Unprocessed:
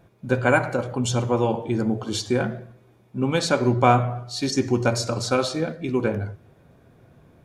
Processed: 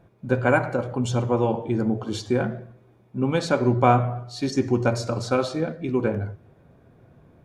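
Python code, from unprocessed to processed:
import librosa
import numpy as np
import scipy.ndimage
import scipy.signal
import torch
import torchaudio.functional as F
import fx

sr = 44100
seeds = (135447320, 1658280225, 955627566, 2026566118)

y = fx.high_shelf(x, sr, hz=2600.0, db=-8.5)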